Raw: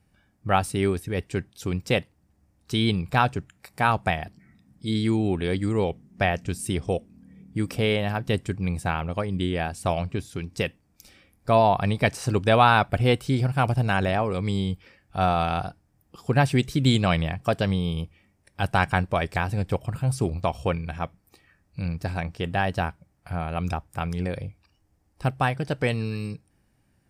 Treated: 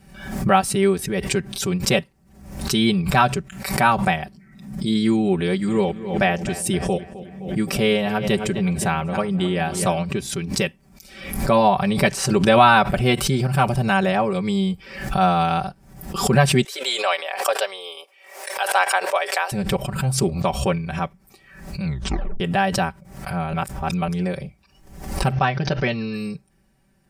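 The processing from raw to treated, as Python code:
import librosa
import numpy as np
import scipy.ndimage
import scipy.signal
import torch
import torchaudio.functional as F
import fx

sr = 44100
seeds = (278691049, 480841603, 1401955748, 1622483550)

y = fx.echo_filtered(x, sr, ms=259, feedback_pct=55, hz=3600.0, wet_db=-15.0, at=(5.66, 9.99), fade=0.02)
y = fx.steep_highpass(y, sr, hz=470.0, slope=36, at=(16.64, 19.52))
y = fx.ellip_lowpass(y, sr, hz=6000.0, order=4, stop_db=40, at=(25.32, 26.14))
y = fx.edit(y, sr, fx.tape_stop(start_s=21.84, length_s=0.56),
    fx.reverse_span(start_s=23.53, length_s=0.55), tone=tone)
y = y + 0.94 * np.pad(y, (int(5.2 * sr / 1000.0), 0))[:len(y)]
y = fx.pre_swell(y, sr, db_per_s=75.0)
y = y * librosa.db_to_amplitude(1.5)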